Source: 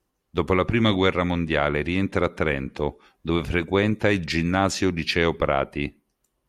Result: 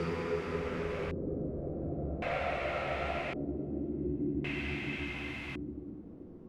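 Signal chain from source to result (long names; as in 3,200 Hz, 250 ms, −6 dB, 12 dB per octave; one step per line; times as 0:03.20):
spike at every zero crossing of −17 dBFS
time-frequency box erased 0:04.45–0:05.45, 750–4,500 Hz
tube saturation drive 28 dB, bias 0.5
extreme stretch with random phases 7.5×, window 0.50 s, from 0:05.22
auto-filter low-pass square 0.45 Hz 320–2,400 Hz
level −3 dB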